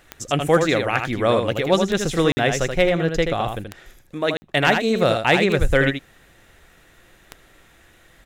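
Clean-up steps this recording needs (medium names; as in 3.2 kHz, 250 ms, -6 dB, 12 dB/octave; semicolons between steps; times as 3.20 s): de-click; interpolate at 2.32/4.37 s, 50 ms; inverse comb 80 ms -6 dB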